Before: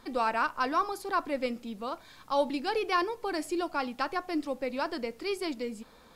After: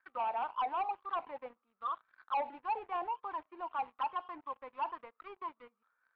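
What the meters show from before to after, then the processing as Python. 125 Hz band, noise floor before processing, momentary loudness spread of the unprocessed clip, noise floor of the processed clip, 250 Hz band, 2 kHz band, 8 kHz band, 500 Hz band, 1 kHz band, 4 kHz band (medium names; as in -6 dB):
no reading, -56 dBFS, 9 LU, -83 dBFS, -22.5 dB, -13.5 dB, under -30 dB, -13.0 dB, -3.5 dB, -15.0 dB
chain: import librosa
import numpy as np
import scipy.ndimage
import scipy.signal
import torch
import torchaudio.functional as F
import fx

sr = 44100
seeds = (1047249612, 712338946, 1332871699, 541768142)

y = fx.auto_wah(x, sr, base_hz=780.0, top_hz=1600.0, q=14.0, full_db=-24.5, direction='down')
y = fx.leveller(y, sr, passes=3)
y = scipy.signal.sosfilt(scipy.signal.cheby2(4, 70, 11000.0, 'lowpass', fs=sr, output='sos'), y)
y = F.gain(torch.from_numpy(y), -1.0).numpy()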